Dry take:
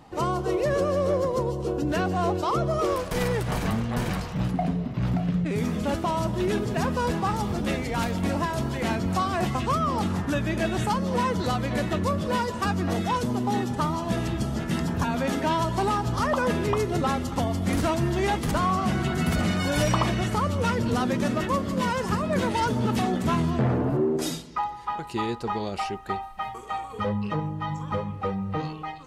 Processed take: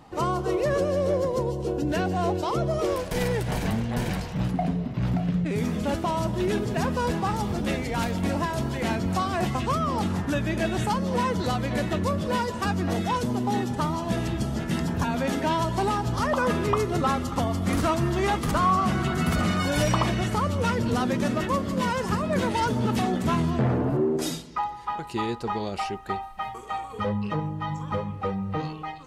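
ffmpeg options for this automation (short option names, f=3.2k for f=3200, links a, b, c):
-af "asetnsamples=n=441:p=0,asendcmd='0.78 equalizer g -9;4.34 equalizer g -2.5;16.37 equalizer g 7;19.66 equalizer g -0.5',equalizer=f=1.2k:t=o:w=0.27:g=2"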